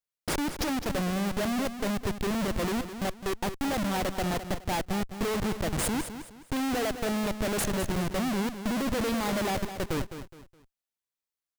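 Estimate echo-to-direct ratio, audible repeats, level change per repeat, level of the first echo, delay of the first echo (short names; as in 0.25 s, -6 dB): -10.0 dB, 3, -10.0 dB, -10.5 dB, 0.209 s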